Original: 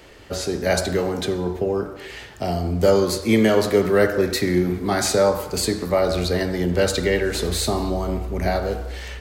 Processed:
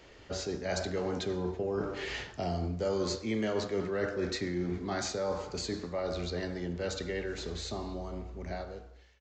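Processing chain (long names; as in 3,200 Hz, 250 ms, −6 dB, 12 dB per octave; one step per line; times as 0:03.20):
fade-out on the ending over 0.75 s
source passing by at 0:02.50, 5 m/s, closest 4.8 metres
reversed playback
downward compressor 5 to 1, threshold −30 dBFS, peak gain reduction 16 dB
reversed playback
downsampling to 16,000 Hz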